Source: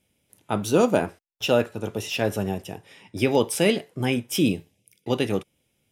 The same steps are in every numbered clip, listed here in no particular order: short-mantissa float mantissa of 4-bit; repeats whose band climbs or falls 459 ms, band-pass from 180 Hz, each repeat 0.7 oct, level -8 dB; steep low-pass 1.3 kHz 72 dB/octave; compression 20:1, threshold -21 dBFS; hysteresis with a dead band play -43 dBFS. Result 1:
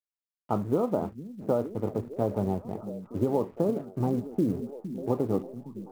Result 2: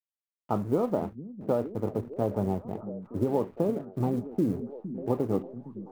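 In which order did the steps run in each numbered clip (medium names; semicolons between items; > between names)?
steep low-pass > hysteresis with a dead band > compression > repeats whose band climbs or falls > short-mantissa float; compression > steep low-pass > short-mantissa float > hysteresis with a dead band > repeats whose band climbs or falls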